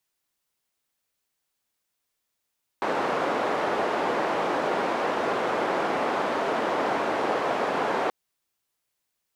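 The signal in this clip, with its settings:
band-limited noise 350–830 Hz, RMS −26 dBFS 5.28 s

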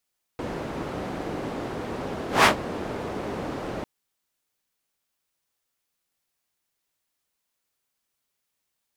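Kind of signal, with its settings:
pass-by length 3.45 s, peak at 0:02.06, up 0.17 s, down 0.12 s, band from 390 Hz, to 1,300 Hz, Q 0.72, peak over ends 17 dB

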